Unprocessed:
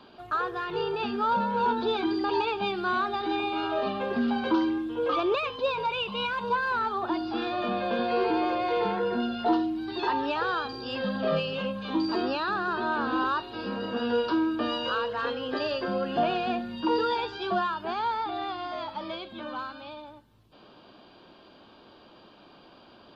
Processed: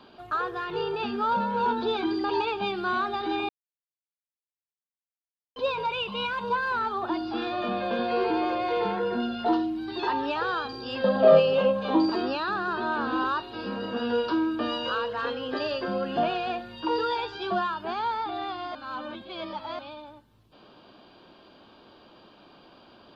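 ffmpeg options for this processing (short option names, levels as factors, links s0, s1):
-filter_complex "[0:a]asettb=1/sr,asplit=3[s0][s1][s2];[s0]atrim=end=11.044[s3];[s1]atrim=start=11.04:end=12.1,asetpts=PTS-STARTPTS,afade=t=in:d=0.004:c=qsin,afade=t=out:st=1.056:d=0.004:c=qsin,equalizer=f=620:w=0.9:g=12.5[s4];[s2]atrim=start=12.096[s5];[s3][s4]acrossfade=d=0.004:c1=hsin:c2=qsin[s6];[s6][s5]acrossfade=d=0.004:c1=qsin:c2=hsin,asettb=1/sr,asplit=3[s7][s8][s9];[s7]atrim=end=16.284[s10];[s8]atrim=start=16.28:end=17.35,asetpts=PTS-STARTPTS,afade=t=in:d=0.004:c=qsin,afade=t=out:st=1.066:d=0.004:c=qsin,equalizer=f=220:w=2.1:g=-11.5[s11];[s9]atrim=start=17.346[s12];[s10][s11]acrossfade=d=0.004:c1=hsin:c2=qsin[s13];[s13][s12]acrossfade=d=0.004:c1=qsin:c2=hsin,asplit=5[s14][s15][s16][s17][s18];[s14]atrim=end=3.49,asetpts=PTS-STARTPTS,afade=t=out:st=3.486:d=0.004:c=hsin[s19];[s15]atrim=start=3.49:end=5.56,asetpts=PTS-STARTPTS,volume=0[s20];[s16]atrim=start=5.56:end=18.752,asetpts=PTS-STARTPTS,afade=t=in:d=0.004:c=hsin[s21];[s17]atrim=start=18.748:end=19.792,asetpts=PTS-STARTPTS,areverse[s22];[s18]atrim=start=19.788[s23];[s19][s20][s21]concat=n=3:v=0:a=1[s24];[s24][s22]acrossfade=d=0.004:c1=hsin:c2=hsin[s25];[s25][s23]acrossfade=d=0.004:c1=hsin:c2=hsin"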